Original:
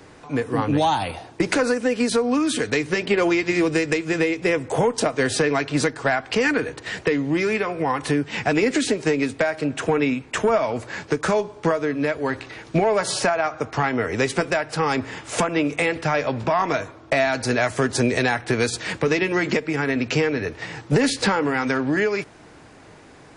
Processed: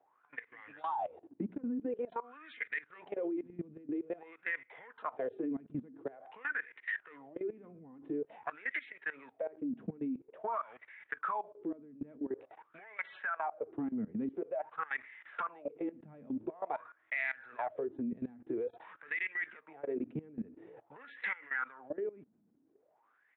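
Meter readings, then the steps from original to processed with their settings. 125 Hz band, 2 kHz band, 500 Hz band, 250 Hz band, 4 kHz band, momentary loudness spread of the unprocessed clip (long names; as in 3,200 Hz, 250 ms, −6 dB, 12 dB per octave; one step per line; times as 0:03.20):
−25.5 dB, −15.0 dB, −20.0 dB, −17.0 dB, −32.5 dB, 5 LU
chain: downsampling to 8,000 Hz
LFO wah 0.48 Hz 210–2,100 Hz, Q 11
output level in coarse steps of 19 dB
level +3.5 dB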